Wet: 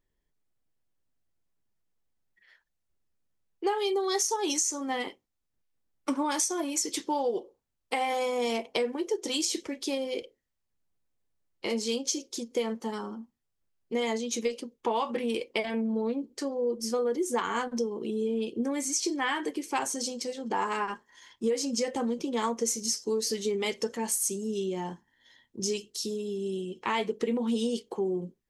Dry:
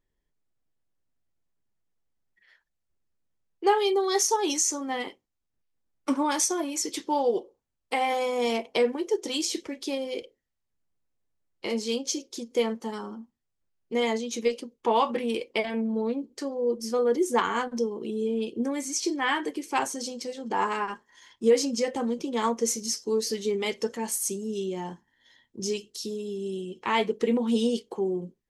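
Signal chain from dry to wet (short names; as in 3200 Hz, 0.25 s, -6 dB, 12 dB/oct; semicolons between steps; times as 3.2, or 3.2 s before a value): dynamic EQ 8100 Hz, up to +4 dB, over -45 dBFS, Q 0.9; compressor 5:1, threshold -25 dBFS, peak gain reduction 9 dB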